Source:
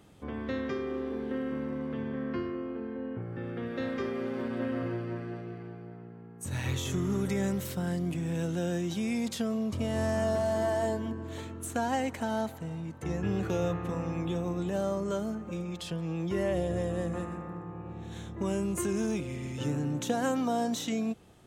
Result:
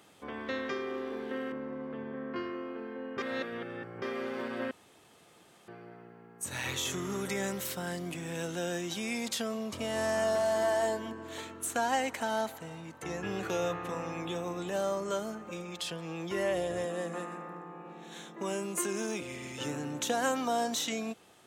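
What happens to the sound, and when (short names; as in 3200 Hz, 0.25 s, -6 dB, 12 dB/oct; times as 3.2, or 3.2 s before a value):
1.52–2.36 LPF 1000 Hz 6 dB/oct
3.18–4.02 reverse
4.71–5.68 room tone
16.85–19.22 elliptic high-pass 150 Hz
whole clip: HPF 780 Hz 6 dB/oct; gain +4.5 dB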